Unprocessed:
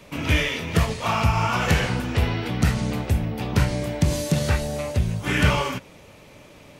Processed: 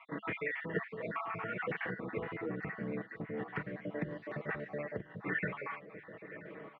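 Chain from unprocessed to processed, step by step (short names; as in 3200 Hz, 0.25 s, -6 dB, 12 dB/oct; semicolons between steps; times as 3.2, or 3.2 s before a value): random spectral dropouts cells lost 49%; bell 280 Hz -3 dB 1.7 oct; comb 6.2 ms, depth 54%; compressor 2.5:1, threshold -40 dBFS, peak gain reduction 17.5 dB; speaker cabinet 210–2000 Hz, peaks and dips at 210 Hz +6 dB, 420 Hz +9 dB, 890 Hz -5 dB, 1900 Hz +9 dB; feedback echo 0.982 s, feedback 38%, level -17 dB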